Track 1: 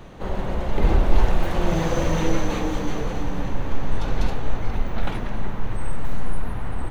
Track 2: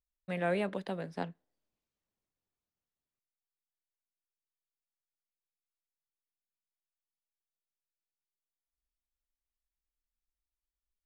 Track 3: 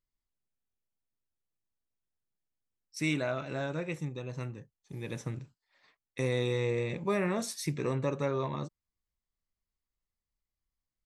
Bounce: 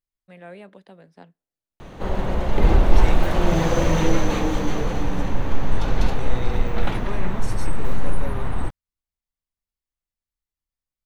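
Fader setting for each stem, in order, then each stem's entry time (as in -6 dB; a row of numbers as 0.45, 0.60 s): +2.5, -9.5, -4.0 dB; 1.80, 0.00, 0.00 s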